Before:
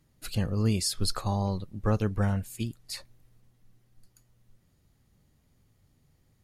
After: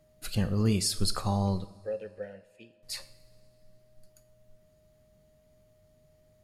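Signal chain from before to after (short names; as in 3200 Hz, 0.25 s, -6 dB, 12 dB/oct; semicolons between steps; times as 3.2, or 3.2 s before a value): 1.65–2.83 vowel filter e; whine 620 Hz -64 dBFS; two-slope reverb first 0.57 s, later 2.5 s, from -17 dB, DRR 10.5 dB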